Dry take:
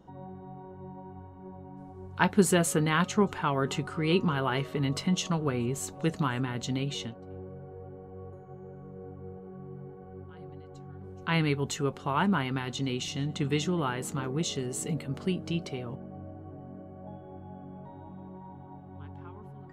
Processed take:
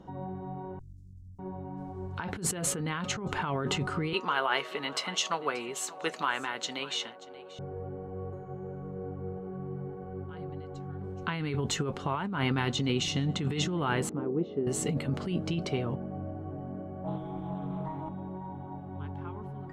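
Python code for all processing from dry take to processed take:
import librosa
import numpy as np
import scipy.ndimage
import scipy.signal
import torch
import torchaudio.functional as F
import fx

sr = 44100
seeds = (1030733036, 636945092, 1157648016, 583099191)

y = fx.chain(x, sr, fx.lower_of_two(delay_ms=3.0),
    fx.cheby2_bandstop(low_hz=620.0, high_hz=1800.0, order=4, stop_db=80),
    fx.band_squash(depth_pct=40), at=(0.79, 1.39))
y = fx.chain(y, sr, fx.highpass(hz=670.0, slope=12),
    fx.echo_single(ms=583, db=-19.0), at=(4.13, 7.59))
y = fx.chain(y, sr, fx.bandpass_q(hz=360.0, q=1.5),
    fx.air_absorb(metres=220.0), at=(14.09, 14.67))
y = fx.chain(y, sr, fx.high_shelf(hz=3400.0, db=6.5),
    fx.comb(ms=6.3, depth=0.96),
    fx.doppler_dist(depth_ms=0.22), at=(17.04, 18.09))
y = fx.high_shelf(y, sr, hz=9400.0, db=-12.0)
y = fx.over_compress(y, sr, threshold_db=-32.0, ratio=-1.0)
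y = y * librosa.db_to_amplitude(2.5)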